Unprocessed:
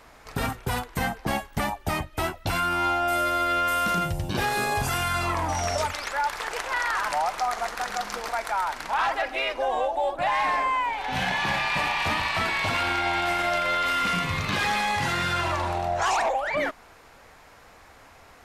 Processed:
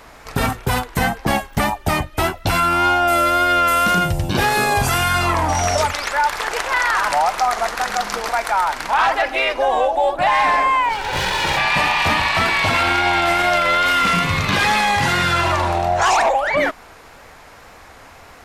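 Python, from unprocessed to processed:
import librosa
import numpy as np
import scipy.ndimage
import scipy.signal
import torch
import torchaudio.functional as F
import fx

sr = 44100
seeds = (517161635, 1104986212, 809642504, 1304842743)

y = fx.lower_of_two(x, sr, delay_ms=2.1, at=(10.89, 11.57))
y = fx.wow_flutter(y, sr, seeds[0], rate_hz=2.1, depth_cents=31.0)
y = y * librosa.db_to_amplitude(8.5)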